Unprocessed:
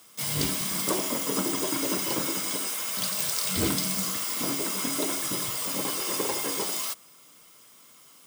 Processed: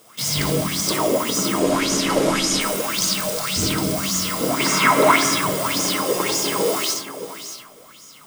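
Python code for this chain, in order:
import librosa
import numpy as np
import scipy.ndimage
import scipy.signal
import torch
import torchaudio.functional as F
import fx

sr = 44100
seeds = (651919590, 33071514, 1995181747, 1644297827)

y = fx.cvsd(x, sr, bps=64000, at=(1.56, 2.61))
y = fx.low_shelf(y, sr, hz=310.0, db=7.5)
y = fx.rider(y, sr, range_db=10, speed_s=0.5)
y = fx.graphic_eq(y, sr, hz=(125, 1000, 2000), db=(7, 11, 11), at=(4.6, 5.31))
y = y + 10.0 ** (-12.5 / 20.0) * np.pad(y, (int(622 * sr / 1000.0), 0))[:len(y)]
y = fx.rev_freeverb(y, sr, rt60_s=0.86, hf_ratio=0.3, predelay_ms=20, drr_db=0.0)
y = fx.bell_lfo(y, sr, hz=1.8, low_hz=470.0, high_hz=6500.0, db=15)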